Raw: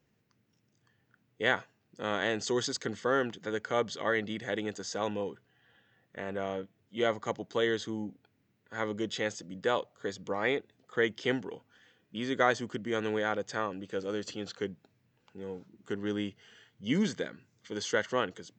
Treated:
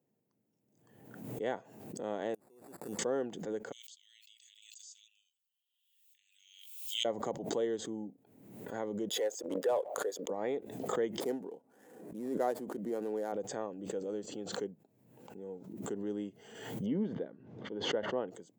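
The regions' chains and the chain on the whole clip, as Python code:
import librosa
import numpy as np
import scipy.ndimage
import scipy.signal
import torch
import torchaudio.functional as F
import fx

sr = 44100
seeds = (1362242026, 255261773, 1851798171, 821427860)

y = fx.chain(x, sr, fx.high_shelf(hz=4400.0, db=9.0),
    fx.gate_flip(shuts_db=-29.0, range_db=-31),
    fx.sample_hold(seeds[0], rate_hz=3100.0, jitter_pct=0), at=(2.34, 2.99))
y = fx.chain(y, sr, fx.steep_highpass(hz=2700.0, slope=48),
    fx.pre_swell(db_per_s=36.0), at=(3.72, 7.05))
y = fx.chain(y, sr, fx.envelope_sharpen(power=1.5),
    fx.highpass(hz=460.0, slope=24),
    fx.leveller(passes=2), at=(9.09, 10.3))
y = fx.chain(y, sr, fx.median_filter(points=15),
    fx.highpass(hz=200.0, slope=12), at=(11.2, 13.32))
y = fx.chain(y, sr, fx.lowpass(hz=3100.0, slope=24),
    fx.peak_eq(hz=2300.0, db=-6.0, octaves=0.71), at=(16.86, 18.28))
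y = scipy.signal.sosfilt(scipy.signal.butter(2, 190.0, 'highpass', fs=sr, output='sos'), y)
y = fx.band_shelf(y, sr, hz=2600.0, db=-14.5, octaves=2.7)
y = fx.pre_swell(y, sr, db_per_s=55.0)
y = y * librosa.db_to_amplitude(-3.5)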